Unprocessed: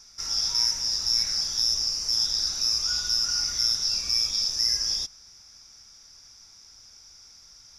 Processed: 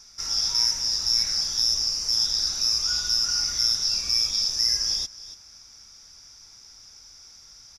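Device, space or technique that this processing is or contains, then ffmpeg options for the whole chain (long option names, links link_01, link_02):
ducked delay: -filter_complex "[0:a]asplit=3[link_01][link_02][link_03];[link_02]adelay=283,volume=-7dB[link_04];[link_03]apad=whole_len=355714[link_05];[link_04][link_05]sidechaincompress=threshold=-44dB:ratio=8:attack=16:release=345[link_06];[link_01][link_06]amix=inputs=2:normalize=0,volume=1.5dB"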